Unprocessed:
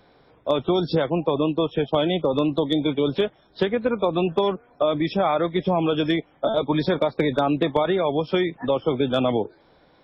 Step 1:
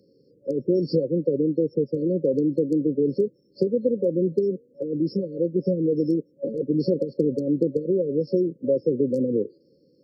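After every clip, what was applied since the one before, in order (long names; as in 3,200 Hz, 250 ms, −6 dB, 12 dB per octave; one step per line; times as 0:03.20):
brick-wall band-stop 570–4,200 Hz
Chebyshev high-pass filter 170 Hz, order 2
dynamic equaliser 740 Hz, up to +4 dB, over −41 dBFS, Q 1.6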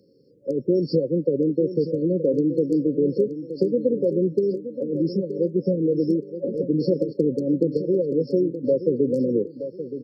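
repeating echo 923 ms, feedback 32%, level −11 dB
level +1 dB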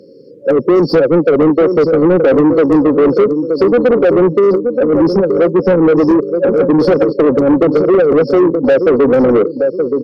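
mid-hump overdrive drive 26 dB, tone 1,300 Hz, clips at −6.5 dBFS
level +5.5 dB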